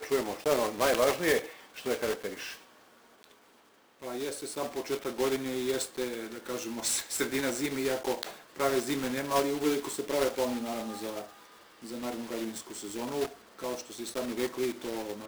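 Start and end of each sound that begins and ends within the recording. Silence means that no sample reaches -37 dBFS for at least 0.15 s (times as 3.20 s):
1.78–2.53 s
4.03–8.36 s
8.56–11.25 s
11.84–13.32 s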